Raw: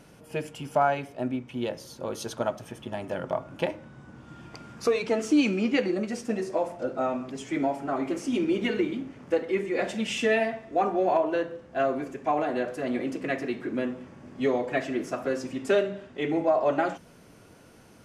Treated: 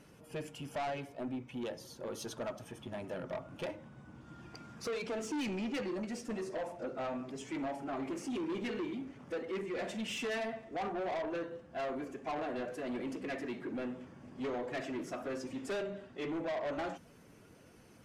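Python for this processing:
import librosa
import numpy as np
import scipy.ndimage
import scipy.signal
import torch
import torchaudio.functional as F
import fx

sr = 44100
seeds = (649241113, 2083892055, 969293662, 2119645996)

y = fx.spec_quant(x, sr, step_db=15)
y = 10.0 ** (-28.0 / 20.0) * np.tanh(y / 10.0 ** (-28.0 / 20.0))
y = y * librosa.db_to_amplitude(-5.5)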